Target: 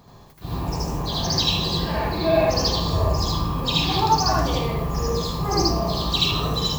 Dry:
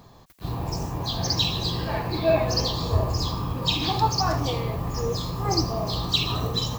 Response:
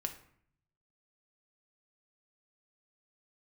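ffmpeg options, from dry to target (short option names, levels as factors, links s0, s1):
-filter_complex "[0:a]asplit=2[s0][s1];[1:a]atrim=start_sample=2205,adelay=78[s2];[s1][s2]afir=irnorm=-1:irlink=0,volume=1.5[s3];[s0][s3]amix=inputs=2:normalize=0,volume=0.841"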